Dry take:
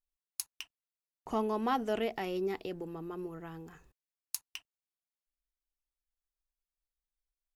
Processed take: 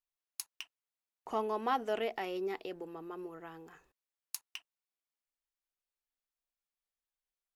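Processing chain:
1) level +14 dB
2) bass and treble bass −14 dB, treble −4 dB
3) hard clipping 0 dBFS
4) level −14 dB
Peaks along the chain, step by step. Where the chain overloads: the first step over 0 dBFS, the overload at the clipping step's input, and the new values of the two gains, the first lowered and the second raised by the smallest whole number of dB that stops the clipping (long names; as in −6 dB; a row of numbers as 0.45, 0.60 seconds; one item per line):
−1.5, −5.5, −5.5, −19.5 dBFS
no step passes full scale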